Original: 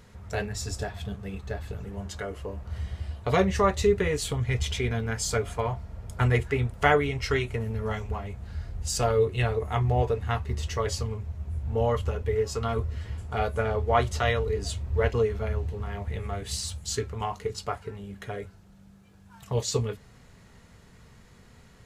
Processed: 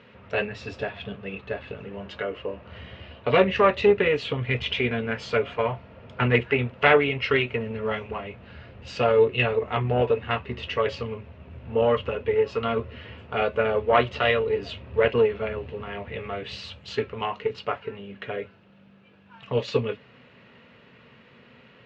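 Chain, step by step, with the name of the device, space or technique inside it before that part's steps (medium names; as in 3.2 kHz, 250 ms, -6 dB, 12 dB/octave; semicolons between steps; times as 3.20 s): guitar amplifier (valve stage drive 11 dB, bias 0.55; tone controls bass -10 dB, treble -1 dB; cabinet simulation 110–3500 Hz, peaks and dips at 130 Hz +6 dB, 240 Hz +7 dB, 540 Hz +5 dB, 770 Hz -5 dB, 2.7 kHz +9 dB); trim +7 dB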